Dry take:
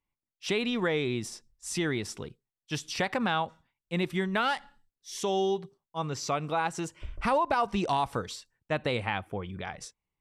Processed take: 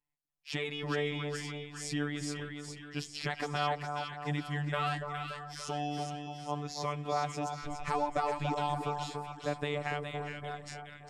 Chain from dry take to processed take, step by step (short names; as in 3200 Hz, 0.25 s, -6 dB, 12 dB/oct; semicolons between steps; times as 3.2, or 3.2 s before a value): robotiser 159 Hz; varispeed -8%; split-band echo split 1300 Hz, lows 0.288 s, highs 0.413 s, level -5 dB; gain -3 dB